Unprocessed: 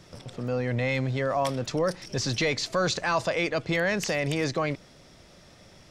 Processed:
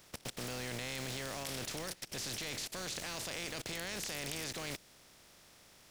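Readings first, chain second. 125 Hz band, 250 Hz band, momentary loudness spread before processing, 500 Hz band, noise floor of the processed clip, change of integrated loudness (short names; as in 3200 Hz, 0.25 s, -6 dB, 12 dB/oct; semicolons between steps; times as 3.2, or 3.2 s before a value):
-16.5 dB, -15.5 dB, 5 LU, -18.0 dB, -62 dBFS, -12.5 dB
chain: spectral contrast lowered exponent 0.39; level quantiser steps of 21 dB; dynamic EQ 1100 Hz, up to -5 dB, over -58 dBFS, Q 1.3; gain +2 dB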